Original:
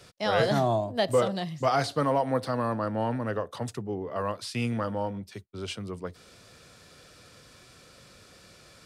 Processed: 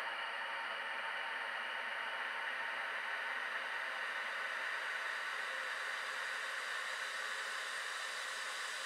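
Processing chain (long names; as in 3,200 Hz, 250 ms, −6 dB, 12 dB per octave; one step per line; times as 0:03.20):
extreme stretch with random phases 20×, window 1.00 s, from 0:03.07
high-pass with resonance 2,100 Hz, resonance Q 2.6
level +1 dB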